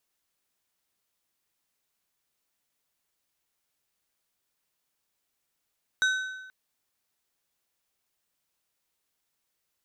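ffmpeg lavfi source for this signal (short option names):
-f lavfi -i "aevalsrc='0.1*pow(10,-3*t/1.12)*sin(2*PI*1520*t)+0.0447*pow(10,-3*t/0.851)*sin(2*PI*3800*t)+0.02*pow(10,-3*t/0.739)*sin(2*PI*6080*t)+0.00891*pow(10,-3*t/0.691)*sin(2*PI*7600*t)+0.00398*pow(10,-3*t/0.639)*sin(2*PI*9880*t)':d=0.48:s=44100"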